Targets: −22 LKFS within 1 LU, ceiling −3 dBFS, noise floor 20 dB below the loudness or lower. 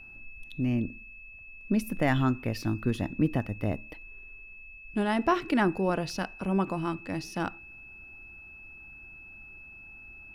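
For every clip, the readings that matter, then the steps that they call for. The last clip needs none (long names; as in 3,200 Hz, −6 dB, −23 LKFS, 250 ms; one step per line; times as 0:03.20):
interfering tone 2,600 Hz; level of the tone −46 dBFS; integrated loudness −29.5 LKFS; sample peak −11.5 dBFS; target loudness −22.0 LKFS
→ notch filter 2,600 Hz, Q 30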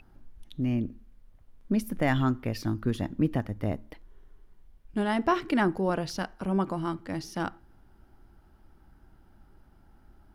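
interfering tone none found; integrated loudness −30.0 LKFS; sample peak −11.5 dBFS; target loudness −22.0 LKFS
→ level +8 dB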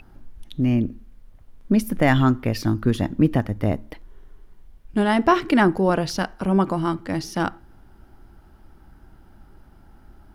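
integrated loudness −22.0 LKFS; sample peak −3.5 dBFS; background noise floor −51 dBFS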